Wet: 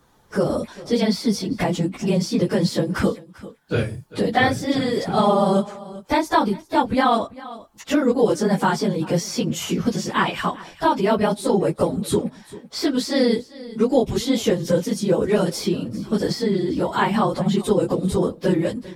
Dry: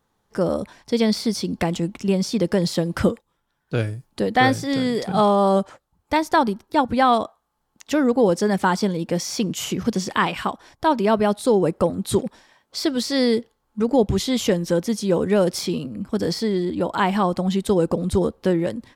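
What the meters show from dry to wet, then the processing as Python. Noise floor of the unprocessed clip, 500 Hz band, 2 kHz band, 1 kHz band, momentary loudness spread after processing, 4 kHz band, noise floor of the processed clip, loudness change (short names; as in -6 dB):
-72 dBFS, 0.0 dB, 0.0 dB, -0.5 dB, 7 LU, 0.0 dB, -49 dBFS, 0.0 dB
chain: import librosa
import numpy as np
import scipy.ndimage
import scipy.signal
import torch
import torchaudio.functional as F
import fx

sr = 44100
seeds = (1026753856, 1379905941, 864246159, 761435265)

y = fx.phase_scramble(x, sr, seeds[0], window_ms=50)
y = y + 10.0 ** (-22.0 / 20.0) * np.pad(y, (int(393 * sr / 1000.0), 0))[:len(y)]
y = fx.band_squash(y, sr, depth_pct=40)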